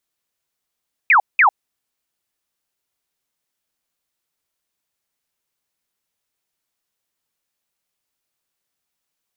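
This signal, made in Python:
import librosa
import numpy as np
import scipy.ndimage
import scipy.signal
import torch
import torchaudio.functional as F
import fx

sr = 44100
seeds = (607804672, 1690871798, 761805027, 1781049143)

y = fx.laser_zaps(sr, level_db=-8.5, start_hz=2600.0, end_hz=740.0, length_s=0.1, wave='sine', shots=2, gap_s=0.19)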